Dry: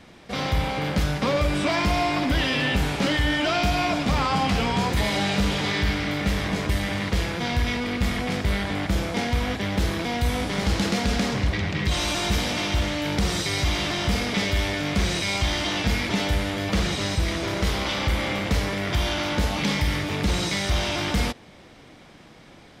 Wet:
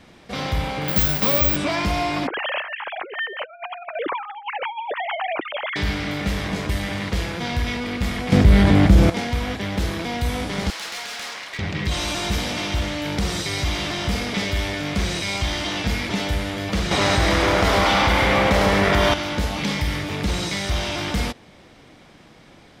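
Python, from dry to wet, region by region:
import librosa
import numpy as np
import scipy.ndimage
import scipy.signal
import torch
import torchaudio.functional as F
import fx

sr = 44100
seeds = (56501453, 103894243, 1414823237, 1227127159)

y = fx.chain(x, sr, fx.high_shelf(hz=3700.0, db=9.0),
    fx.resample_bad(factor=2, down='none', up='zero_stuff'), at=(0.88, 1.56))
y = fx.chain(y, sr, fx.sine_speech(),
    fx.lowpass(hz=1600.0, slope=6),
    fx.over_compress(threshold_db=-28.0, ratio=-0.5), at=(2.27, 5.76))
y = fx.chain(y, sr, fx.low_shelf(hz=480.0, db=11.5),
    fx.env_flatten(amount_pct=50), at=(8.32, 9.1))
y = fx.chain(y, sr, fx.highpass(hz=1000.0, slope=12),
    fx.clip_hard(threshold_db=-27.0), at=(10.7, 11.59))
y = fx.chain(y, sr, fx.peak_eq(hz=930.0, db=9.0, octaves=2.6),
    fx.echo_split(split_hz=770.0, low_ms=152, high_ms=104, feedback_pct=52, wet_db=-3.5),
    fx.env_flatten(amount_pct=50), at=(16.91, 19.14))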